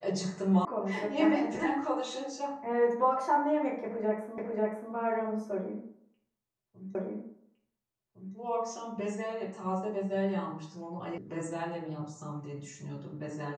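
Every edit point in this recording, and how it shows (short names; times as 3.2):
0.65 sound cut off
4.38 repeat of the last 0.54 s
6.95 repeat of the last 1.41 s
11.18 sound cut off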